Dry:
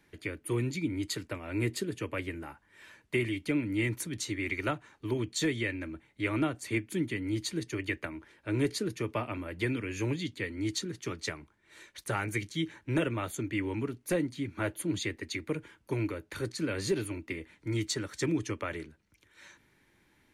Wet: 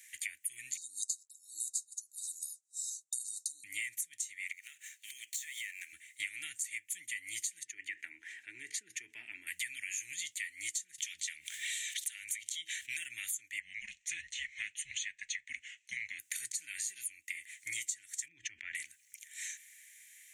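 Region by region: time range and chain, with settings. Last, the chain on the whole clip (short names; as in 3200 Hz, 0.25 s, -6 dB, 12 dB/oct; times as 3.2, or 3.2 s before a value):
0.77–3.64 weighting filter ITU-R 468 + expander -49 dBFS + brick-wall FIR band-stop 780–3700 Hz
4.52–5.93 median filter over 5 samples + HPF 1500 Hz 6 dB/oct + compressor 5:1, threshold -48 dBFS
7.65–9.47 band-pass 450 Hz, Q 1.5 + fast leveller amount 50%
10.98–12.97 bell 3400 Hz +12 dB 0.83 oct + harmonic tremolo 4.8 Hz, crossover 470 Hz + fast leveller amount 70%
13.6–16.19 speaker cabinet 250–6000 Hz, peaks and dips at 310 Hz -5 dB, 720 Hz -5 dB, 1600 Hz -5 dB, 2800 Hz +5 dB, 5200 Hz -7 dB + frequency shift -210 Hz
18.28–18.75 tape spacing loss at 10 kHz 41 dB + sustainer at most 70 dB/s
whole clip: elliptic high-pass 1900 Hz, stop band 40 dB; resonant high shelf 5800 Hz +8 dB, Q 3; compressor 12:1, threshold -48 dBFS; gain +12 dB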